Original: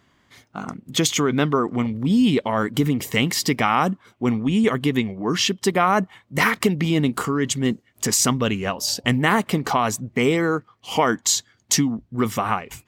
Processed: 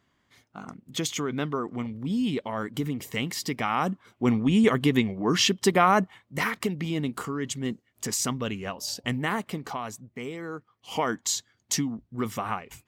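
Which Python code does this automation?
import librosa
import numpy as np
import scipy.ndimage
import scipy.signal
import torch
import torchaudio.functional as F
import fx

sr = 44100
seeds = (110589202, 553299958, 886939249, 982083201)

y = fx.gain(x, sr, db=fx.line((3.52, -9.5), (4.33, -1.5), (5.9, -1.5), (6.45, -9.0), (9.21, -9.0), (10.33, -17.5), (10.94, -8.0)))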